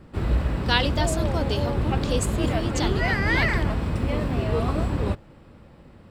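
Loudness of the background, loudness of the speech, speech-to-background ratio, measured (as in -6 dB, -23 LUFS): -25.0 LUFS, -29.0 LUFS, -4.0 dB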